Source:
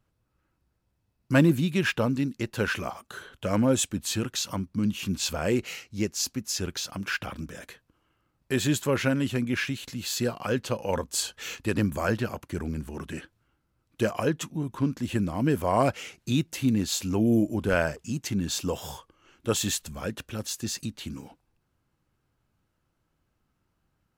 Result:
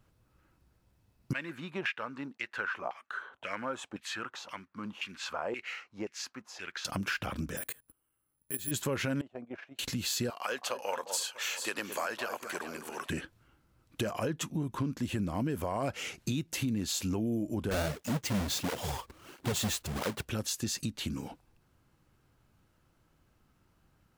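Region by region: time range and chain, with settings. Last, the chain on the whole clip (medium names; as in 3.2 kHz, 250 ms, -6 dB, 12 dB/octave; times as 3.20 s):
1.33–6.85 s: block-companded coder 7-bit + LFO band-pass saw down 1.9 Hz 720–2400 Hz
7.57–8.71 s: level held to a coarse grid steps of 23 dB + careless resampling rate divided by 4×, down filtered, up zero stuff
9.21–9.79 s: band-pass filter 680 Hz, Q 4.9 + gate -50 dBFS, range -11 dB
10.30–13.10 s: high-pass 720 Hz + echo whose repeats swap between lows and highs 214 ms, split 1.3 kHz, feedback 52%, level -10 dB
17.71–20.26 s: square wave that keeps the level + cancelling through-zero flanger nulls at 1.5 Hz, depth 7.7 ms
whole clip: peak limiter -19 dBFS; compression 3:1, threshold -39 dBFS; trim +6 dB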